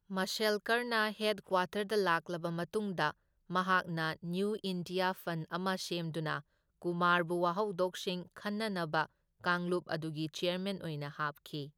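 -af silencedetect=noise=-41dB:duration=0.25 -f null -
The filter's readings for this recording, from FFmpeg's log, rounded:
silence_start: 3.11
silence_end: 3.50 | silence_duration: 0.39
silence_start: 6.40
silence_end: 6.82 | silence_duration: 0.43
silence_start: 9.06
silence_end: 9.44 | silence_duration: 0.39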